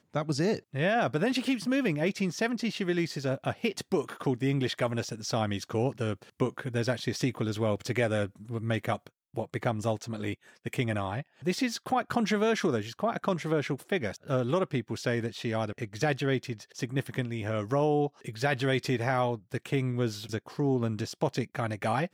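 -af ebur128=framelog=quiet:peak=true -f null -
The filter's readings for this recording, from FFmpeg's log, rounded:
Integrated loudness:
  I:         -30.5 LUFS
  Threshold: -40.6 LUFS
Loudness range:
  LRA:         2.6 LU
  Threshold: -50.7 LUFS
  LRA low:   -32.1 LUFS
  LRA high:  -29.5 LUFS
True peak:
  Peak:      -13.4 dBFS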